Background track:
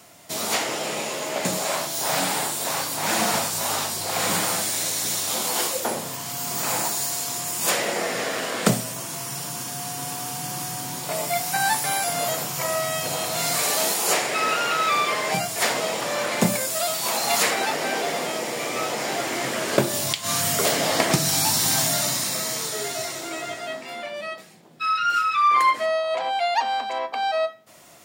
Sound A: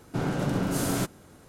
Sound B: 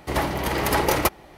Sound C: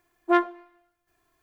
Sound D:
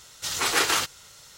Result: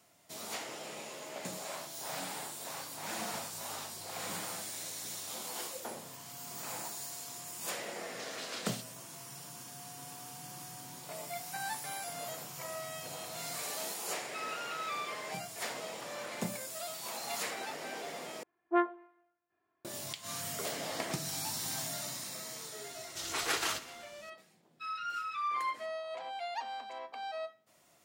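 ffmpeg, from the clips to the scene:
-filter_complex "[4:a]asplit=2[a][b];[0:a]volume=-16.5dB[c];[a]bandpass=f=4.4k:t=q:w=1.2:csg=0[d];[3:a]highpass=160,lowpass=2.1k[e];[b]aecho=1:1:126|252|378|504|630:0.141|0.0735|0.0382|0.0199|0.0103[f];[c]asplit=2[g][h];[g]atrim=end=18.434[i];[e]atrim=end=1.42,asetpts=PTS-STARTPTS,volume=-7.5dB[j];[h]atrim=start=19.846[k];[d]atrim=end=1.37,asetpts=PTS-STARTPTS,volume=-16.5dB,afade=t=in:d=0.004:c=hsin,afade=t=out:st=1.366:d=0.004:c=hsin,adelay=7960[l];[f]atrim=end=1.37,asetpts=PTS-STARTPTS,volume=-10.5dB,afade=t=in:d=0.004:c=hsin,afade=t=out:st=1.366:d=0.004:c=hsin,adelay=22930[m];[i][j]acrossfade=d=0.004:c1=hsin:c2=hsin[n];[n][k]acrossfade=d=0.004:c1=hsin:c2=hsin[o];[o][l][m]amix=inputs=3:normalize=0"

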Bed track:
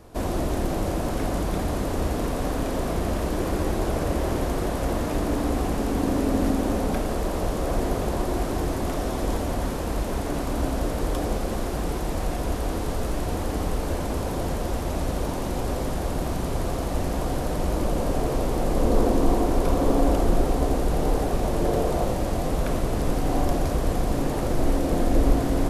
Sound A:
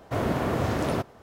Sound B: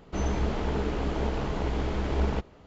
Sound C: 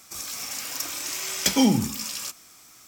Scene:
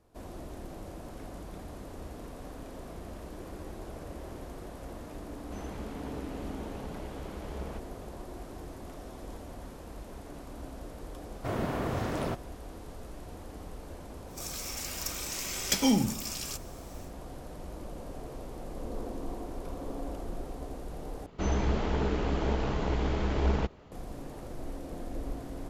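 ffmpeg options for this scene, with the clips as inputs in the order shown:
-filter_complex "[2:a]asplit=2[a][b];[0:a]volume=-17.5dB[c];[a]highpass=55[d];[c]asplit=2[e][f];[e]atrim=end=21.264[g];[b]atrim=end=2.66,asetpts=PTS-STARTPTS,volume=-0.5dB[h];[f]atrim=start=23.916[i];[d]atrim=end=2.66,asetpts=PTS-STARTPTS,volume=-12.5dB,afade=t=in:d=0.004:c=hsin,afade=t=out:st=2.656:d=0.004:c=hsin,adelay=5380[j];[1:a]atrim=end=1.22,asetpts=PTS-STARTPTS,volume=-6dB,afade=t=in:d=0.004:c=hsin,afade=t=out:st=1.216:d=0.004:c=hsin,adelay=11330[k];[3:a]atrim=end=2.87,asetpts=PTS-STARTPTS,volume=-5.5dB,afade=t=in:d=0.1,afade=t=out:st=2.77:d=0.1,adelay=14260[l];[g][h]acrossfade=d=0.004:c1=hsin:c2=hsin[m];[m][i]acrossfade=d=0.004:c1=hsin:c2=hsin[n];[n][j][k][l]amix=inputs=4:normalize=0"

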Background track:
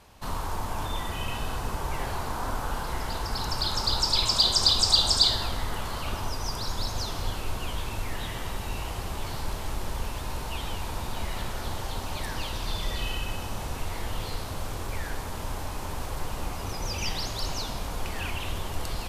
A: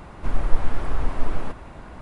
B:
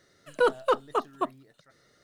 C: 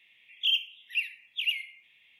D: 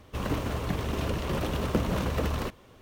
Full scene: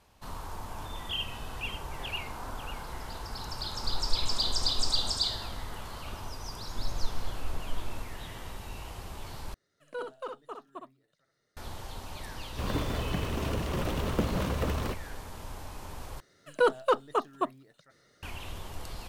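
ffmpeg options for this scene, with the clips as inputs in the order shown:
-filter_complex "[1:a]asplit=2[a][b];[2:a]asplit=2[c][d];[0:a]volume=-8.5dB[e];[3:a]aecho=1:1:545:0.299[f];[c]aecho=1:1:61|73:0.562|0.15[g];[e]asplit=3[h][i][j];[h]atrim=end=9.544[k];[g]atrim=end=2.03,asetpts=PTS-STARTPTS,volume=-15.5dB[l];[i]atrim=start=11.566:end=16.204[m];[d]atrim=end=2.03,asetpts=PTS-STARTPTS,volume=-1dB[n];[j]atrim=start=18.226[o];[f]atrim=end=2.19,asetpts=PTS-STARTPTS,volume=-9dB,afade=t=in:d=0.004:c=hsin,afade=t=out:st=2.186:d=0.004:c=hsin,adelay=660[p];[a]atrim=end=2.01,asetpts=PTS-STARTPTS,volume=-12dB,afade=t=in:d=0.004:c=hsin,afade=t=out:st=2.006:d=0.004:c=hsin,adelay=3590[q];[b]atrim=end=2.01,asetpts=PTS-STARTPTS,volume=-13dB,afade=t=in:d=0.004:c=hsin,afade=t=out:st=2.006:d=0.004:c=hsin,adelay=6510[r];[4:a]atrim=end=2.81,asetpts=PTS-STARTPTS,volume=-2dB,afade=t=in:d=0.004:c=hsin,afade=t=out:st=2.806:d=0.004:c=hsin,adelay=12440[s];[k][l]acrossfade=d=0.004:c1=hsin:c2=hsin[t];[t][m]acrossfade=d=0.004:c1=hsin:c2=hsin[u];[u][n]acrossfade=d=0.004:c1=hsin:c2=hsin[v];[v][o]acrossfade=d=0.004:c1=hsin:c2=hsin[w];[w][p][q][r][s]amix=inputs=5:normalize=0"

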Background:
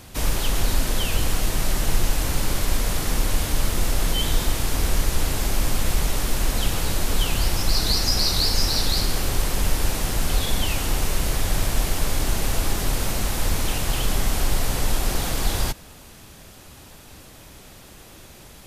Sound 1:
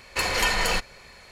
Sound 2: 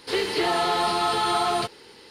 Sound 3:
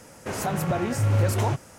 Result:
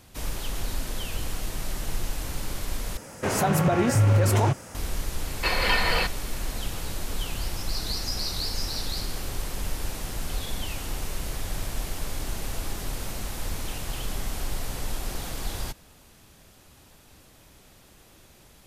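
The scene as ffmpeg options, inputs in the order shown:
-filter_complex "[0:a]volume=-9dB[a];[3:a]alimiter=level_in=16.5dB:limit=-1dB:release=50:level=0:latency=1[b];[1:a]aresample=11025,aresample=44100[c];[a]asplit=2[d][e];[d]atrim=end=2.974[f];[b]atrim=end=1.78,asetpts=PTS-STARTPTS,volume=-11.5dB[g];[e]atrim=start=4.746[h];[c]atrim=end=1.31,asetpts=PTS-STARTPTS,afade=t=in:d=0.004:c=hsin,afade=t=out:st=1.306:d=0.004:c=hsin,adelay=5270[i];[f][g]acrossfade=d=0.004:c1=hsin:c2=hsin[j];[j][h]acrossfade=d=0.004:c1=hsin:c2=hsin[k];[k][i]amix=inputs=2:normalize=0"

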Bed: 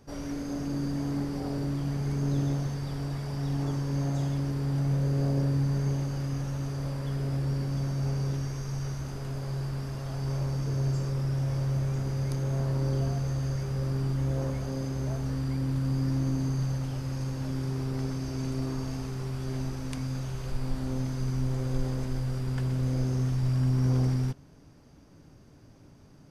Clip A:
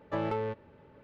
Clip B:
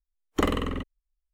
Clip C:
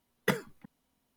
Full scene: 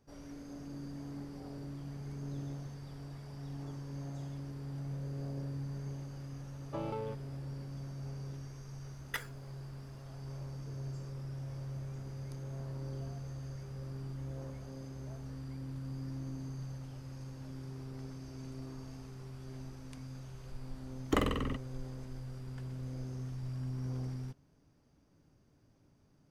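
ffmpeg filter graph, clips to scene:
-filter_complex "[0:a]volume=-13.5dB[a];[1:a]equalizer=f=1.8k:w=3.9:g=-13.5[b];[3:a]highpass=1.2k[c];[b]atrim=end=1.03,asetpts=PTS-STARTPTS,volume=-7dB,afade=t=in:d=0.004:c=hsin,afade=t=out:st=1.026:d=0.004:c=hsin,adelay=6610[d];[c]atrim=end=1.16,asetpts=PTS-STARTPTS,volume=-5.5dB,afade=t=in:d=0.004:c=hsin,afade=t=out:st=1.156:d=0.004:c=hsin,adelay=8860[e];[2:a]atrim=end=1.33,asetpts=PTS-STARTPTS,volume=-5.5dB,afade=t=in:d=0.004:c=hsin,afade=t=out:st=1.326:d=0.004:c=hsin,adelay=20740[f];[a][d][e][f]amix=inputs=4:normalize=0"

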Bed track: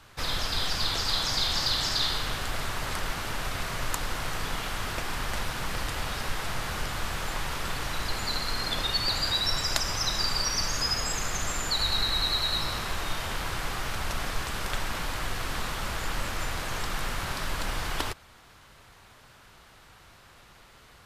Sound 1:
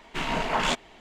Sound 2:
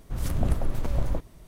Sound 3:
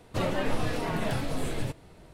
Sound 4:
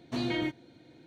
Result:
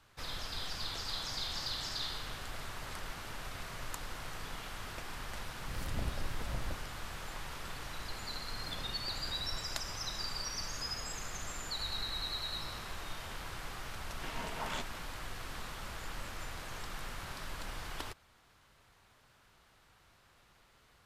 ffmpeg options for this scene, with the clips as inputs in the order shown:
-filter_complex "[2:a]asplit=2[a][b];[0:a]volume=-11.5dB[c];[b]acompressor=threshold=-28dB:ratio=6:attack=3.2:release=140:knee=1:detection=peak[d];[a]atrim=end=1.47,asetpts=PTS-STARTPTS,volume=-12.5dB,afade=t=in:d=0.004:c=hsin,afade=t=out:st=1.466:d=0.004:c=hsin,adelay=5560[e];[d]atrim=end=1.47,asetpts=PTS-STARTPTS,volume=-15dB,afade=t=in:d=0.004:c=hsin,afade=t=out:st=1.466:d=0.004:c=hsin,adelay=8430[f];[1:a]atrim=end=1,asetpts=PTS-STARTPTS,volume=-15dB,afade=t=in:d=0.004:c=hsin,afade=t=out:st=0.996:d=0.004:c=hsin,adelay=14070[g];[c][e][f][g]amix=inputs=4:normalize=0"

